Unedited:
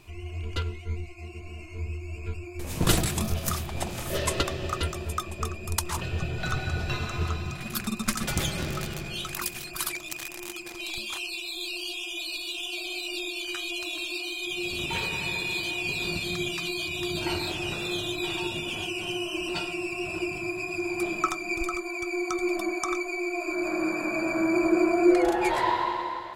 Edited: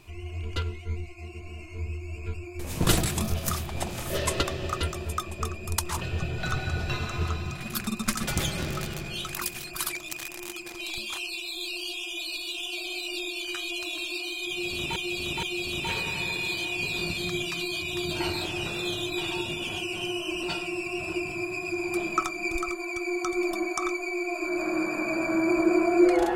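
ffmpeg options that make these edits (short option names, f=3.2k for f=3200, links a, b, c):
-filter_complex "[0:a]asplit=3[a][b][c];[a]atrim=end=14.962[d];[b]atrim=start=14.488:end=14.962[e];[c]atrim=start=14.488[f];[d][e]acrossfade=d=0.004:c1=hsin:c2=hsin[g];[g][f]acrossfade=d=0.004:c1=hsin:c2=hsin"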